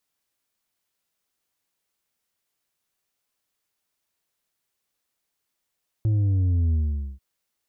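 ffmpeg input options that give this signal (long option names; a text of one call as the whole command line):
ffmpeg -f lavfi -i "aevalsrc='0.112*clip((1.14-t)/0.46,0,1)*tanh(1.78*sin(2*PI*110*1.14/log(65/110)*(exp(log(65/110)*t/1.14)-1)))/tanh(1.78)':duration=1.14:sample_rate=44100" out.wav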